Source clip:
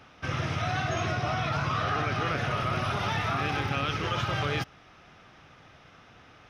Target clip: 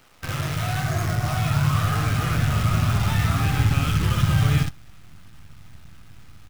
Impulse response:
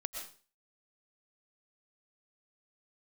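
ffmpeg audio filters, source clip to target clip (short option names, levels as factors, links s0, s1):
-filter_complex "[0:a]asettb=1/sr,asplit=3[s0][s1][s2];[s0]atrim=end=0.804[s3];[s1]atrim=start=0.8:end=1.28,asetpts=PTS-STARTPTS,afade=t=in:d=0.004:c=qsin,afade=t=out:st=0.476:d=0.004:c=qsin,asuperstop=centerf=3400:order=12:qfactor=1.3[s4];[s2]atrim=start=1.276[s5];[s3][s4]acrossfade=d=0.004:c1=hsin:c2=qsin[s6];[s6][s5]acrossfade=d=0.004:c1=qsin:c2=hsin,asplit=2[s7][s8];[s8]aecho=0:1:19|62|75:0.211|0.501|0.188[s9];[s7][s9]amix=inputs=2:normalize=0,acrusher=bits=6:dc=4:mix=0:aa=0.000001,asubboost=boost=9.5:cutoff=160"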